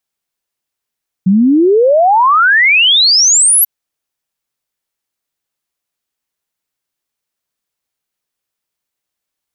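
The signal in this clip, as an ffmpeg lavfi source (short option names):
-f lavfi -i "aevalsrc='0.531*clip(min(t,2.39-t)/0.01,0,1)*sin(2*PI*180*2.39/log(12000/180)*(exp(log(12000/180)*t/2.39)-1))':d=2.39:s=44100"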